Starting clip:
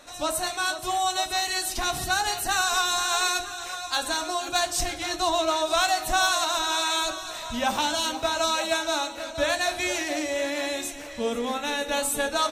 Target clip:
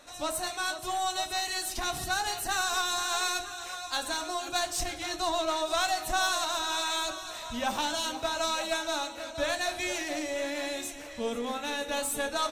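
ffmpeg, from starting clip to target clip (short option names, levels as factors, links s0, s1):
-filter_complex "[0:a]asplit=2[s0][s1];[s1]aeval=exprs='clip(val(0),-1,0.0211)':c=same,volume=0.473[s2];[s0][s2]amix=inputs=2:normalize=0,volume=0.422"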